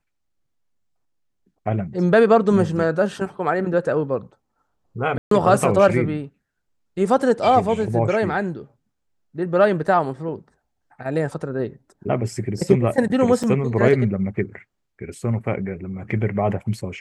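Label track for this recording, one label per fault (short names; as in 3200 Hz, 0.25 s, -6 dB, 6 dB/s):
5.180000	5.310000	gap 0.133 s
13.430000	13.440000	gap 6.2 ms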